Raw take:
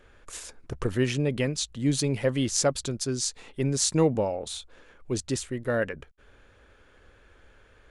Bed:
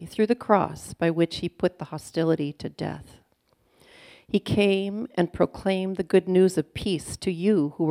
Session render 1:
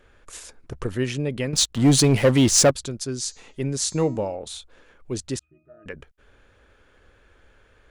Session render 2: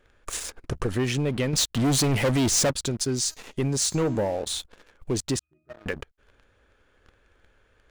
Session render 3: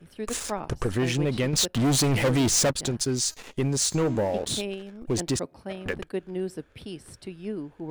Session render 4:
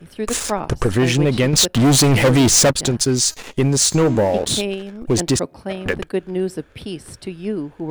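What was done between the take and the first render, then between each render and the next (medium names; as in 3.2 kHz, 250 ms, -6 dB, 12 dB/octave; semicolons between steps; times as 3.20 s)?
1.53–2.71 s: waveshaping leveller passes 3; 3.21–4.36 s: de-hum 317.8 Hz, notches 24; 5.39–5.86 s: pitch-class resonator D#, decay 0.5 s
waveshaping leveller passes 3; compression 2:1, threshold -30 dBFS, peak gain reduction 10.5 dB
add bed -12 dB
trim +9 dB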